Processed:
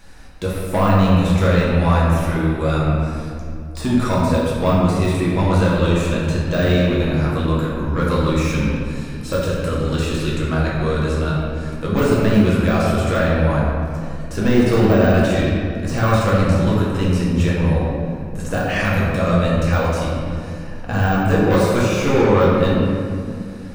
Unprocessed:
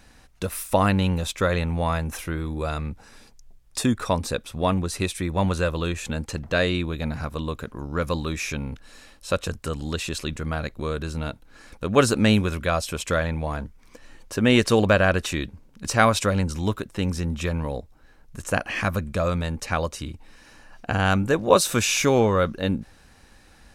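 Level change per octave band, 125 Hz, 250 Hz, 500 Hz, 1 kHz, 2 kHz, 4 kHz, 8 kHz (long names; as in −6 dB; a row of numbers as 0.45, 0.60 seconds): +9.0, +8.0, +6.0, +4.5, +3.0, +0.5, −4.5 decibels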